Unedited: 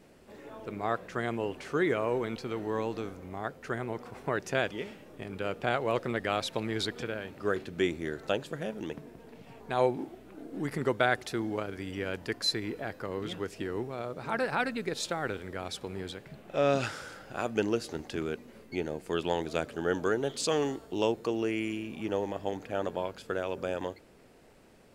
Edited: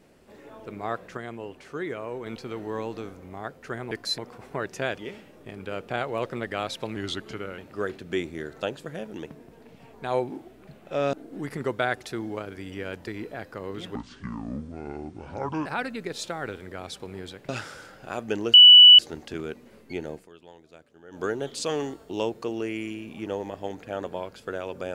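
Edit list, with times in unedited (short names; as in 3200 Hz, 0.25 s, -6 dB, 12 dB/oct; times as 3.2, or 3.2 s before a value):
1.17–2.26 gain -5 dB
6.69–7.25 speed 90%
12.28–12.55 move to 3.91
13.43–14.47 speed 61%
16.3–16.76 move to 10.34
17.81 add tone 2960 Hz -6.5 dBFS 0.45 s
18.98–20.06 dip -19.5 dB, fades 0.13 s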